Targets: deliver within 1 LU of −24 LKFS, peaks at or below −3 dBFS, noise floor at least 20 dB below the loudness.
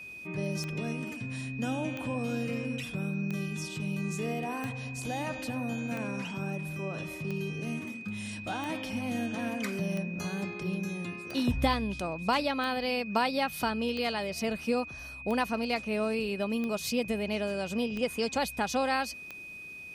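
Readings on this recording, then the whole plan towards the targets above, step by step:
number of clicks 15; interfering tone 2,500 Hz; level of the tone −42 dBFS; integrated loudness −32.5 LKFS; sample peak −13.0 dBFS; target loudness −24.0 LKFS
→ click removal
notch filter 2,500 Hz, Q 30
level +8.5 dB

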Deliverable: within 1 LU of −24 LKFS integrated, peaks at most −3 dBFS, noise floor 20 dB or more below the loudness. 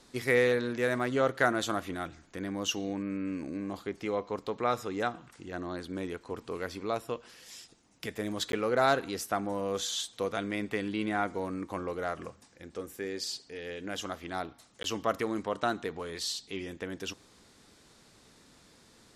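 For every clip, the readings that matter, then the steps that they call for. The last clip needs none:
number of dropouts 2; longest dropout 12 ms; integrated loudness −33.0 LKFS; sample peak −11.0 dBFS; target loudness −24.0 LKFS
→ repair the gap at 0:08.52/0:14.83, 12 ms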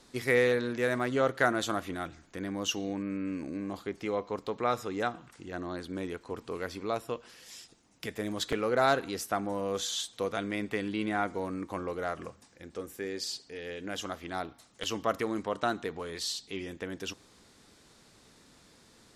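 number of dropouts 0; integrated loudness −33.0 LKFS; sample peak −11.0 dBFS; target loudness −24.0 LKFS
→ level +9 dB
brickwall limiter −3 dBFS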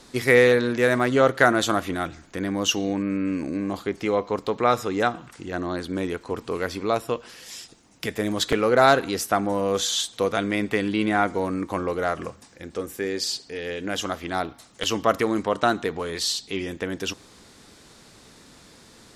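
integrated loudness −24.0 LKFS; sample peak −3.0 dBFS; background noise floor −51 dBFS

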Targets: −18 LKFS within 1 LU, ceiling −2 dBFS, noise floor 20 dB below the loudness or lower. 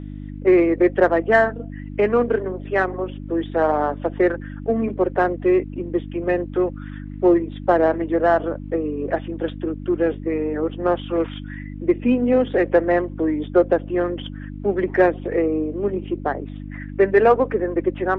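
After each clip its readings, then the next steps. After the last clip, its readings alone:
mains hum 50 Hz; hum harmonics up to 300 Hz; level of the hum −30 dBFS; integrated loudness −21.0 LKFS; sample peak −3.5 dBFS; target loudness −18.0 LKFS
→ hum removal 50 Hz, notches 6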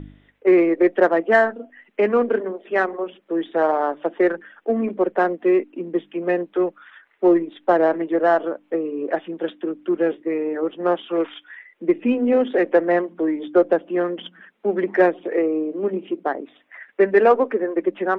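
mains hum none found; integrated loudness −21.0 LKFS; sample peak −3.5 dBFS; target loudness −18.0 LKFS
→ level +3 dB
brickwall limiter −2 dBFS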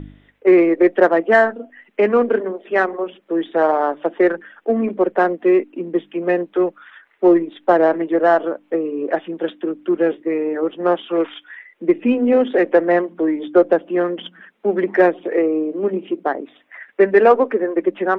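integrated loudness −18.0 LKFS; sample peak −2.0 dBFS; background noise floor −58 dBFS

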